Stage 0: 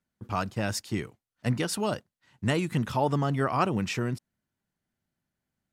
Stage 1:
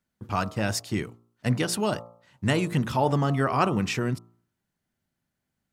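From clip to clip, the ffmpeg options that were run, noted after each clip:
-af "bandreject=f=57.84:t=h:w=4,bandreject=f=115.68:t=h:w=4,bandreject=f=173.52:t=h:w=4,bandreject=f=231.36:t=h:w=4,bandreject=f=289.2:t=h:w=4,bandreject=f=347.04:t=h:w=4,bandreject=f=404.88:t=h:w=4,bandreject=f=462.72:t=h:w=4,bandreject=f=520.56:t=h:w=4,bandreject=f=578.4:t=h:w=4,bandreject=f=636.24:t=h:w=4,bandreject=f=694.08:t=h:w=4,bandreject=f=751.92:t=h:w=4,bandreject=f=809.76:t=h:w=4,bandreject=f=867.6:t=h:w=4,bandreject=f=925.44:t=h:w=4,bandreject=f=983.28:t=h:w=4,bandreject=f=1.04112k:t=h:w=4,bandreject=f=1.09896k:t=h:w=4,bandreject=f=1.1568k:t=h:w=4,bandreject=f=1.21464k:t=h:w=4,bandreject=f=1.27248k:t=h:w=4,bandreject=f=1.33032k:t=h:w=4,volume=3dB"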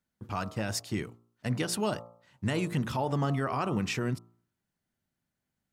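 -af "alimiter=limit=-16.5dB:level=0:latency=1:release=94,volume=-3.5dB"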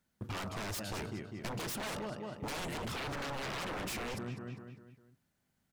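-filter_complex "[0:a]asplit=2[a][b];[b]adelay=200,lowpass=f=4.4k:p=1,volume=-10.5dB,asplit=2[c][d];[d]adelay=200,lowpass=f=4.4k:p=1,volume=0.44,asplit=2[e][f];[f]adelay=200,lowpass=f=4.4k:p=1,volume=0.44,asplit=2[g][h];[h]adelay=200,lowpass=f=4.4k:p=1,volume=0.44,asplit=2[i][j];[j]adelay=200,lowpass=f=4.4k:p=1,volume=0.44[k];[a][c][e][g][i][k]amix=inputs=6:normalize=0,aeval=exprs='0.0211*(abs(mod(val(0)/0.0211+3,4)-2)-1)':c=same,acompressor=threshold=-42dB:ratio=6,volume=5dB"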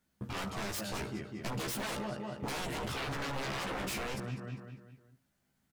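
-af "aecho=1:1:15|72:0.708|0.126"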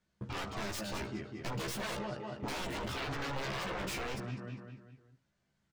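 -filter_complex "[0:a]acrossover=split=810|7900[a][b][c];[c]acrusher=bits=6:dc=4:mix=0:aa=0.000001[d];[a][b][d]amix=inputs=3:normalize=0,flanger=delay=1.8:depth=1.6:regen=-65:speed=0.55:shape=sinusoidal,volume=3.5dB"

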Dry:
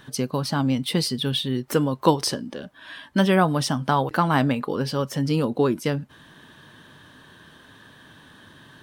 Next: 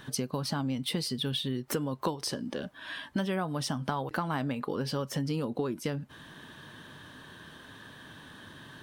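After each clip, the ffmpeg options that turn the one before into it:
-af "acompressor=threshold=-29dB:ratio=6"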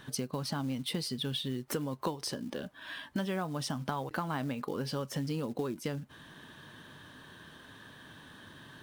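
-af "acrusher=bits=6:mode=log:mix=0:aa=0.000001,volume=-3dB"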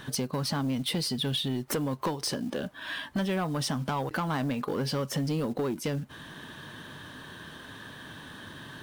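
-af "asoftclip=type=tanh:threshold=-30.5dB,volume=7.5dB"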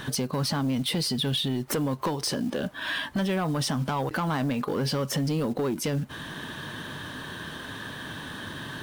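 -af "alimiter=level_in=4.5dB:limit=-24dB:level=0:latency=1:release=60,volume=-4.5dB,volume=7dB"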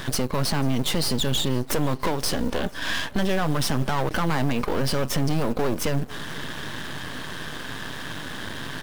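-af "aeval=exprs='max(val(0),0)':c=same,aecho=1:1:490|980|1470|1960:0.0668|0.0394|0.0233|0.0137,volume=7.5dB"

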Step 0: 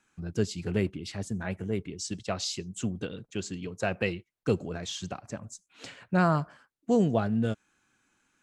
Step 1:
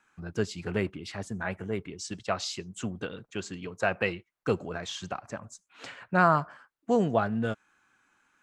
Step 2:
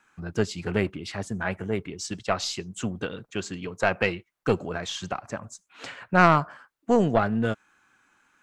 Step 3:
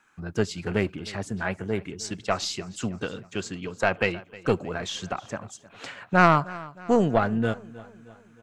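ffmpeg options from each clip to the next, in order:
-af "equalizer=f=1.2k:t=o:w=2.3:g=10.5,volume=-4dB"
-af "aeval=exprs='0.376*(cos(1*acos(clip(val(0)/0.376,-1,1)))-cos(1*PI/2))+0.188*(cos(2*acos(clip(val(0)/0.376,-1,1)))-cos(2*PI/2))+0.0335*(cos(5*acos(clip(val(0)/0.376,-1,1)))-cos(5*PI/2))':c=same,volume=1dB"
-af "aecho=1:1:311|622|933|1244:0.1|0.051|0.026|0.0133"

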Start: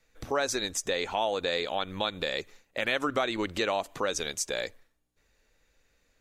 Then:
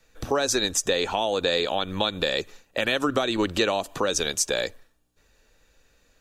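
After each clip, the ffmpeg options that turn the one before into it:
-filter_complex "[0:a]bandreject=f=2.1k:w=6.5,acrossover=split=450|3000[a][b][c];[b]acompressor=threshold=-32dB:ratio=6[d];[a][d][c]amix=inputs=3:normalize=0,volume=7.5dB"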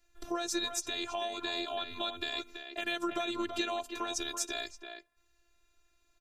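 -filter_complex "[0:a]afftfilt=real='hypot(re,im)*cos(PI*b)':imag='0':win_size=512:overlap=0.75,asplit=2[a][b];[b]adelay=330,highpass=300,lowpass=3.4k,asoftclip=type=hard:threshold=-16dB,volume=-7dB[c];[a][c]amix=inputs=2:normalize=0,volume=-7dB"

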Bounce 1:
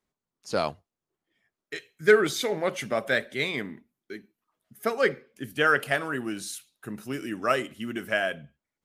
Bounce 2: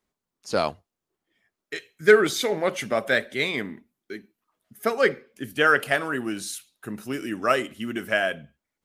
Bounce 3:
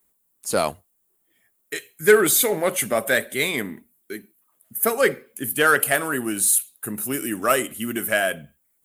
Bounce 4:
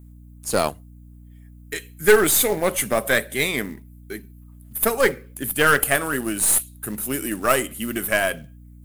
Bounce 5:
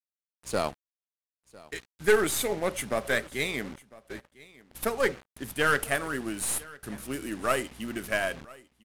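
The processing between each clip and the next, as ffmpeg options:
-af "equalizer=f=140:w=4.3:g=-4,volume=3dB"
-filter_complex "[0:a]aexciter=amount=9.8:drive=3.4:freq=7.7k,asplit=2[a][b];[b]asoftclip=type=tanh:threshold=-17dB,volume=-5dB[c];[a][c]amix=inputs=2:normalize=0,volume=-1dB"
-af "aeval=exprs='0.891*(cos(1*acos(clip(val(0)/0.891,-1,1)))-cos(1*PI/2))+0.0708*(cos(6*acos(clip(val(0)/0.891,-1,1)))-cos(6*PI/2))':c=same,acrusher=bits=5:mode=log:mix=0:aa=0.000001,aeval=exprs='val(0)+0.00708*(sin(2*PI*60*n/s)+sin(2*PI*2*60*n/s)/2+sin(2*PI*3*60*n/s)/3+sin(2*PI*4*60*n/s)/4+sin(2*PI*5*60*n/s)/5)':c=same"
-af "acrusher=bits=5:mix=0:aa=0.000001,adynamicsmooth=sensitivity=6:basefreq=4.2k,aecho=1:1:1002:0.0794,volume=-7.5dB"

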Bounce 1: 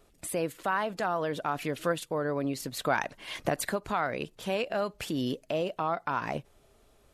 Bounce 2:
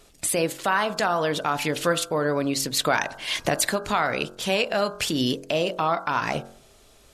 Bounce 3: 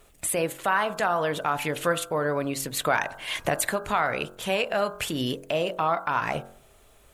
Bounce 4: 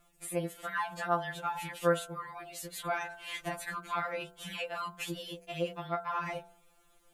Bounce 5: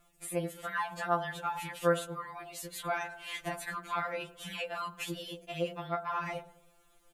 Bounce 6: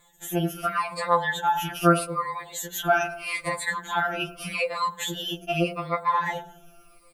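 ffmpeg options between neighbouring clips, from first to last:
-filter_complex "[0:a]equalizer=f=5.6k:w=0.46:g=8.5,bandreject=f=45.53:t=h:w=4,bandreject=f=91.06:t=h:w=4,bandreject=f=136.59:t=h:w=4,bandreject=f=182.12:t=h:w=4,bandreject=f=227.65:t=h:w=4,bandreject=f=273.18:t=h:w=4,bandreject=f=318.71:t=h:w=4,bandreject=f=364.24:t=h:w=4,bandreject=f=409.77:t=h:w=4,bandreject=f=455.3:t=h:w=4,bandreject=f=500.83:t=h:w=4,bandreject=f=546.36:t=h:w=4,bandreject=f=591.89:t=h:w=4,bandreject=f=637.42:t=h:w=4,bandreject=f=682.95:t=h:w=4,bandreject=f=728.48:t=h:w=4,bandreject=f=774.01:t=h:w=4,bandreject=f=819.54:t=h:w=4,bandreject=f=865.07:t=h:w=4,bandreject=f=910.6:t=h:w=4,bandreject=f=956.13:t=h:w=4,bandreject=f=1.00166k:t=h:w=4,bandreject=f=1.04719k:t=h:w=4,bandreject=f=1.09272k:t=h:w=4,bandreject=f=1.13825k:t=h:w=4,bandreject=f=1.18378k:t=h:w=4,bandreject=f=1.22931k:t=h:w=4,bandreject=f=1.27484k:t=h:w=4,bandreject=f=1.32037k:t=h:w=4,bandreject=f=1.3659k:t=h:w=4,bandreject=f=1.41143k:t=h:w=4,bandreject=f=1.45696k:t=h:w=4,bandreject=f=1.50249k:t=h:w=4,bandreject=f=1.54802k:t=h:w=4,bandreject=f=1.59355k:t=h:w=4,bandreject=f=1.63908k:t=h:w=4,asplit=2[a][b];[b]alimiter=limit=-18dB:level=0:latency=1:release=202,volume=1dB[c];[a][c]amix=inputs=2:normalize=0"
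-af "equalizer=f=260:t=o:w=1.5:g=-5,acrusher=bits=10:mix=0:aa=0.000001,equalizer=f=5k:t=o:w=1:g=-11"
-filter_complex "[0:a]acrossover=split=3000[a][b];[b]alimiter=limit=-22dB:level=0:latency=1:release=271[c];[a][c]amix=inputs=2:normalize=0,afftfilt=real='re*2.83*eq(mod(b,8),0)':imag='im*2.83*eq(mod(b,8),0)':win_size=2048:overlap=0.75,volume=-7dB"
-filter_complex "[0:a]asplit=2[a][b];[b]adelay=106,lowpass=f=1.4k:p=1,volume=-18.5dB,asplit=2[c][d];[d]adelay=106,lowpass=f=1.4k:p=1,volume=0.53,asplit=2[e][f];[f]adelay=106,lowpass=f=1.4k:p=1,volume=0.53,asplit=2[g][h];[h]adelay=106,lowpass=f=1.4k:p=1,volume=0.53[i];[a][c][e][g][i]amix=inputs=5:normalize=0"
-af "afftfilt=real='re*pow(10,18/40*sin(2*PI*(1*log(max(b,1)*sr/1024/100)/log(2)-(-0.81)*(pts-256)/sr)))':imag='im*pow(10,18/40*sin(2*PI*(1*log(max(b,1)*sr/1024/100)/log(2)-(-0.81)*(pts-256)/sr)))':win_size=1024:overlap=0.75,volume=6.5dB"

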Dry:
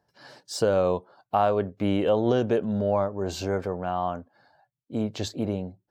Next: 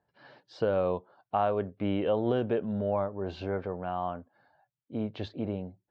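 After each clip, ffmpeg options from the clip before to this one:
-af "lowpass=f=3.5k:w=0.5412,lowpass=f=3.5k:w=1.3066,volume=-5dB"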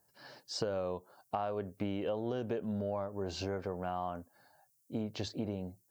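-af "equalizer=f=3.1k:t=o:w=0.57:g=3,acompressor=threshold=-32dB:ratio=6,aexciter=amount=6.3:drive=8.7:freq=5k"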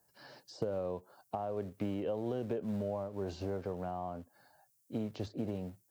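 -filter_complex "[0:a]acrossover=split=140|870[a][b][c];[a]acrusher=bits=3:mode=log:mix=0:aa=0.000001[d];[c]acompressor=threshold=-53dB:ratio=6[e];[d][b][e]amix=inputs=3:normalize=0"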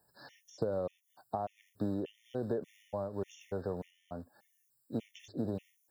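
-af "afftfilt=real='re*gt(sin(2*PI*1.7*pts/sr)*(1-2*mod(floor(b*sr/1024/1800),2)),0)':imag='im*gt(sin(2*PI*1.7*pts/sr)*(1-2*mod(floor(b*sr/1024/1800),2)),0)':win_size=1024:overlap=0.75,volume=2dB"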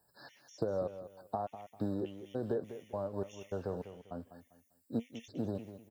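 -af "flanger=delay=0.9:depth=3.5:regen=79:speed=1.1:shape=triangular,aecho=1:1:198|396|594:0.251|0.0754|0.0226,volume=4dB"

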